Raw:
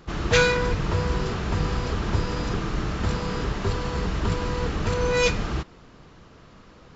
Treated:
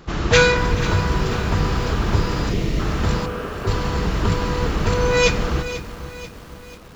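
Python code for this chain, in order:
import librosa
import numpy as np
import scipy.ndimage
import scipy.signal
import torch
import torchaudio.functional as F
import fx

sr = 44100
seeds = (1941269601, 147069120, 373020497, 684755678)

y = fx.spec_erase(x, sr, start_s=2.5, length_s=0.29, low_hz=720.0, high_hz=1800.0)
y = fx.cabinet(y, sr, low_hz=270.0, low_slope=24, high_hz=2600.0, hz=(320.0, 910.0, 2000.0), db=(-8, -9, -9), at=(3.25, 3.66), fade=0.02)
y = fx.echo_alternate(y, sr, ms=216, hz=830.0, feedback_pct=52, wet_db=-13.0)
y = fx.echo_crushed(y, sr, ms=490, feedback_pct=55, bits=7, wet_db=-13.0)
y = y * librosa.db_to_amplitude(5.0)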